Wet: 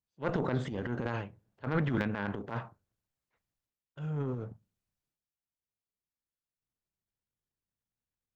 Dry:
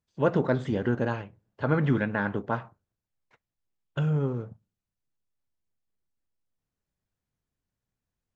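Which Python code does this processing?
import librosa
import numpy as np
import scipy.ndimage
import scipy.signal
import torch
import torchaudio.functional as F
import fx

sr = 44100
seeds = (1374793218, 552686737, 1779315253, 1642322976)

y = fx.cheby_harmonics(x, sr, harmonics=(3,), levels_db=(-13,), full_scale_db=-9.5)
y = fx.transient(y, sr, attack_db=-10, sustain_db=10)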